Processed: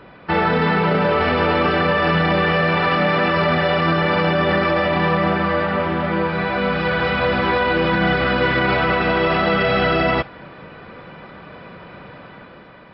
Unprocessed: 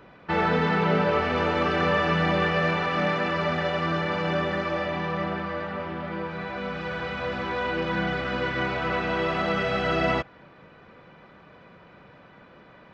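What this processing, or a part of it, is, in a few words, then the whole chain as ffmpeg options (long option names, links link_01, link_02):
low-bitrate web radio: -af "dynaudnorm=framelen=110:gausssize=11:maxgain=5dB,alimiter=limit=-16.5dB:level=0:latency=1:release=25,volume=7.5dB" -ar 12000 -c:a libmp3lame -b:a 32k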